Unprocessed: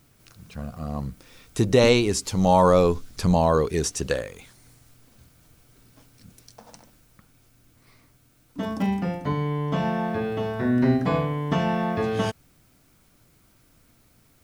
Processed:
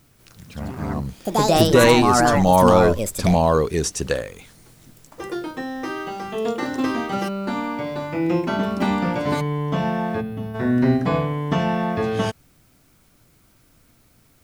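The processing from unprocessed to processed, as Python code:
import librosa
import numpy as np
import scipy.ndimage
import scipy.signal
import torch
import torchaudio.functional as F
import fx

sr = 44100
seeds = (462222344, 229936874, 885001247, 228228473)

y = fx.echo_pitch(x, sr, ms=188, semitones=5, count=2, db_per_echo=-3.0)
y = fx.spec_box(y, sr, start_s=10.21, length_s=0.34, low_hz=280.0, high_hz=9400.0, gain_db=-11)
y = y * librosa.db_to_amplitude(2.5)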